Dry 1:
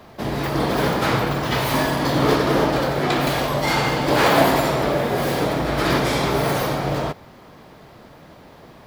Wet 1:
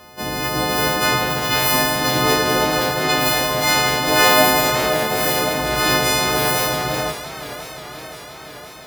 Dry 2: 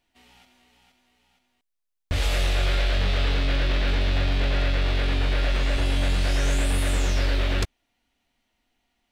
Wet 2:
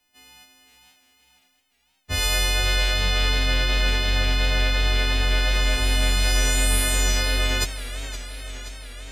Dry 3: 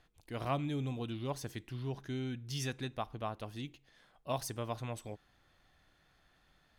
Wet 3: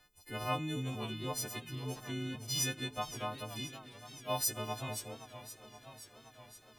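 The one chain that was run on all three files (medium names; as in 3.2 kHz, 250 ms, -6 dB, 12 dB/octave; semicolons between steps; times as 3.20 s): partials quantised in pitch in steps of 3 st; modulated delay 522 ms, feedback 70%, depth 131 cents, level -14 dB; trim -1 dB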